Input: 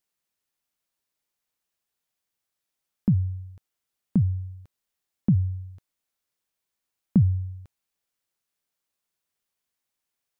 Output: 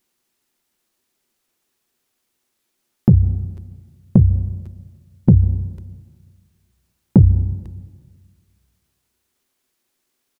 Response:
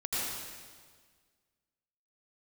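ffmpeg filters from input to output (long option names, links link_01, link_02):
-filter_complex "[0:a]equalizer=frequency=360:width=3.8:gain=13,asplit=2[link_01][link_02];[link_02]asetrate=29433,aresample=44100,atempo=1.49831,volume=-2dB[link_03];[link_01][link_03]amix=inputs=2:normalize=0,acontrast=85,asplit=2[link_04][link_05];[1:a]atrim=start_sample=2205,adelay=55[link_06];[link_05][link_06]afir=irnorm=-1:irlink=0,volume=-24dB[link_07];[link_04][link_07]amix=inputs=2:normalize=0,volume=1.5dB"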